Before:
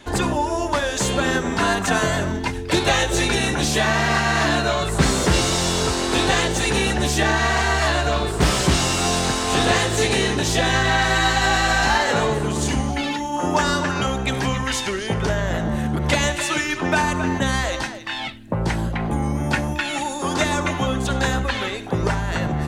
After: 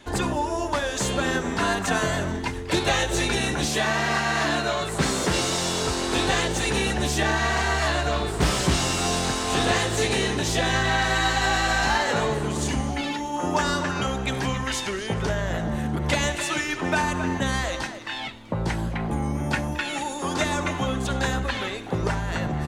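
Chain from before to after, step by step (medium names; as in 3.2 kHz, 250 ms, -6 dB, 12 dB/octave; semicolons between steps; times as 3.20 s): 3.66–5.87 s: high-pass 140 Hz 6 dB/octave; frequency-shifting echo 216 ms, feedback 63%, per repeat +110 Hz, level -21 dB; trim -4 dB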